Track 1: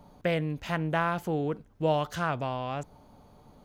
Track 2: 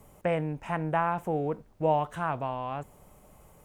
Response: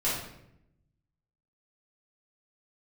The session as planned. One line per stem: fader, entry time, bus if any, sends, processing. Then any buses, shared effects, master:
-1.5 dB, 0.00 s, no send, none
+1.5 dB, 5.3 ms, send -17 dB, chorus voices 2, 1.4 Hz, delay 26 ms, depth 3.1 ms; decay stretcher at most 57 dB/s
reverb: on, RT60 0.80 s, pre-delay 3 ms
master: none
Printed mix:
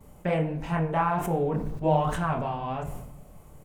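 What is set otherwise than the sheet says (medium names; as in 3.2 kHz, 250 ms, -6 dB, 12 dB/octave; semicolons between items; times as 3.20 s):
stem 1 -1.5 dB -> -9.5 dB; master: extra bass shelf 260 Hz +6.5 dB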